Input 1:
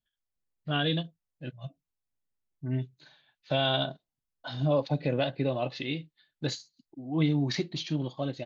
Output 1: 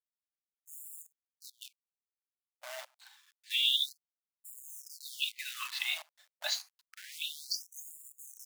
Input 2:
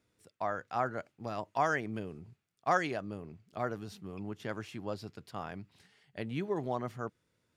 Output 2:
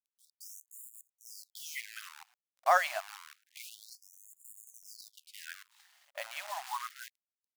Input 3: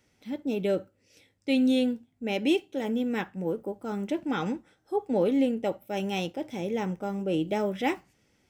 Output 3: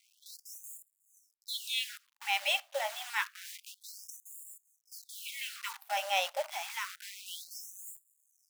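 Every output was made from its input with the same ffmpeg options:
-af "acrusher=bits=8:dc=4:mix=0:aa=0.000001,afftfilt=real='re*gte(b*sr/1024,520*pow(6900/520,0.5+0.5*sin(2*PI*0.28*pts/sr)))':imag='im*gte(b*sr/1024,520*pow(6900/520,0.5+0.5*sin(2*PI*0.28*pts/sr)))':win_size=1024:overlap=0.75,volume=4dB"

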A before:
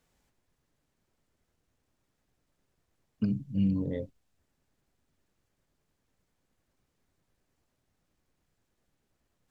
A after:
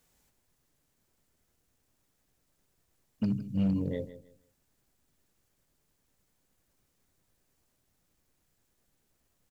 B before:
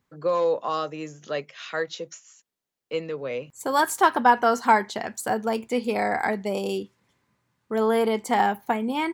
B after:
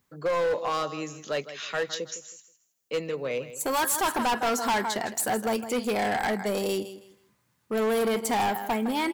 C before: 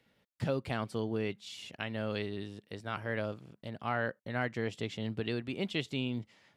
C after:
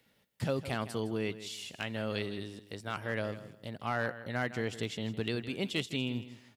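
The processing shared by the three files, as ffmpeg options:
-af "crystalizer=i=1.5:c=0,aecho=1:1:160|320|480:0.2|0.0499|0.0125,volume=22.5dB,asoftclip=hard,volume=-22.5dB"

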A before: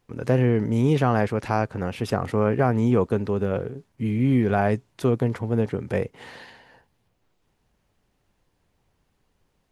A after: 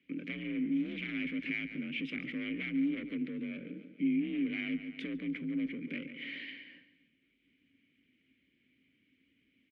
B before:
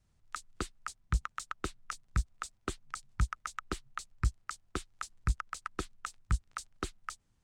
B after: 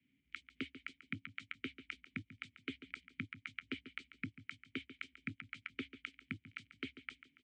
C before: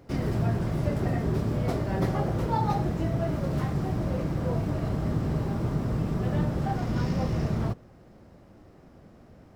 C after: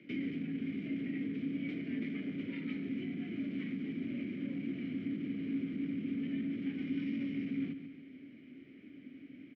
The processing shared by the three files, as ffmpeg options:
-filter_complex "[0:a]aeval=exprs='0.447*sin(PI/2*3.16*val(0)/0.447)':c=same,afreqshift=48,highshelf=f=4.2k:g=-11,aecho=1:1:141|282|423|564:0.188|0.0735|0.0287|0.0112,asoftclip=type=tanh:threshold=-7.5dB,alimiter=limit=-12dB:level=0:latency=1:release=492,acompressor=threshold=-23dB:ratio=2,asplit=3[a][b][c];[a]bandpass=f=270:t=q:w=8,volume=0dB[d];[b]bandpass=f=2.29k:t=q:w=8,volume=-6dB[e];[c]bandpass=f=3.01k:t=q:w=8,volume=-9dB[f];[d][e][f]amix=inputs=3:normalize=0,equalizer=f=2.5k:t=o:w=1.1:g=12.5,volume=-5dB"

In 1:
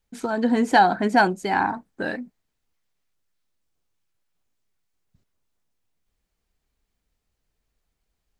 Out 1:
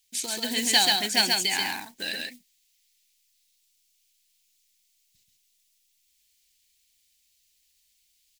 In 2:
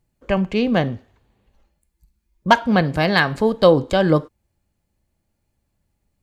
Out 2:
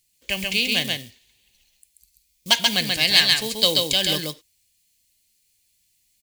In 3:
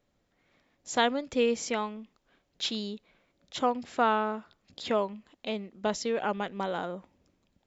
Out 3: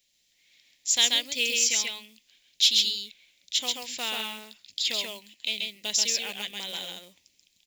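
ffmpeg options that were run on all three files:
-af "aecho=1:1:134:0.708,acrusher=bits=9:mode=log:mix=0:aa=0.000001,aexciter=amount=10.3:drive=9.4:freq=2.1k,volume=-14dB"

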